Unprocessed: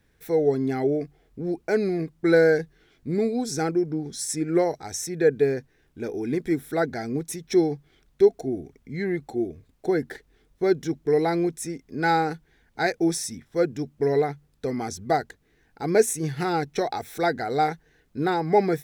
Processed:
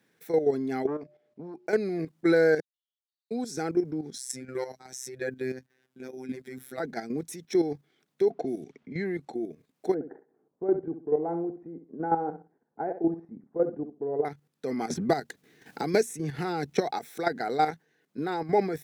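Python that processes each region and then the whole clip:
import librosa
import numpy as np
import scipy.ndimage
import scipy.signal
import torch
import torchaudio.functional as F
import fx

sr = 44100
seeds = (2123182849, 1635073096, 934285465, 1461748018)

y = fx.chain(x, sr, fx.air_absorb(metres=78.0),
    fx.comb_fb(f0_hz=120.0, decay_s=0.95, harmonics='odd', damping=0.0, mix_pct=40),
    fx.transformer_sat(knee_hz=490.0), at=(0.87, 1.67))
y = fx.chain(y, sr, fx.brickwall_highpass(low_hz=2800.0),
    fx.spacing_loss(db_at_10k=43),
    fx.level_steps(step_db=23), at=(2.6, 3.31))
y = fx.chain(y, sr, fx.robotise(hz=129.0),
    fx.dynamic_eq(hz=510.0, q=0.97, threshold_db=-37.0, ratio=4.0, max_db=-7), at=(4.18, 6.8))
y = fx.chain(y, sr, fx.env_lowpass(base_hz=990.0, full_db=-24.5),
    fx.band_squash(depth_pct=70), at=(8.3, 9.33))
y = fx.chain(y, sr, fx.lowpass(hz=1000.0, slope=24),
    fx.low_shelf(hz=180.0, db=-5.5),
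    fx.echo_feedback(ms=66, feedback_pct=24, wet_db=-10.5), at=(9.94, 14.25))
y = fx.chain(y, sr, fx.low_shelf(hz=150.0, db=8.0),
    fx.band_squash(depth_pct=100), at=(14.9, 16.91))
y = scipy.signal.sosfilt(scipy.signal.butter(4, 160.0, 'highpass', fs=sr, output='sos'), y)
y = fx.level_steps(y, sr, step_db=10)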